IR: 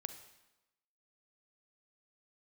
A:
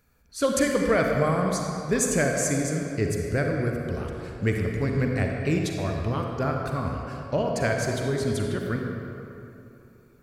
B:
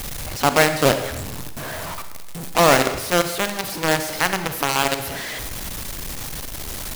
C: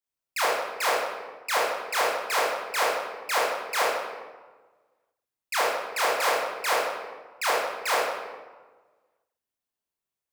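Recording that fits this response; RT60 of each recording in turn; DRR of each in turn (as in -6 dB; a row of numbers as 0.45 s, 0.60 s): B; 2.9 s, 1.0 s, 1.4 s; 1.0 dB, 9.0 dB, -6.5 dB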